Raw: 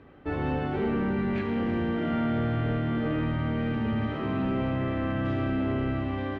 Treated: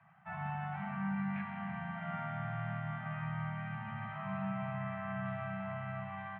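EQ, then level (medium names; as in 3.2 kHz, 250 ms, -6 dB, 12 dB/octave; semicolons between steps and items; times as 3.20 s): high-pass 140 Hz 24 dB/octave; Chebyshev band-stop 200–660 Hz, order 5; low-pass 2.4 kHz 24 dB/octave; -4.5 dB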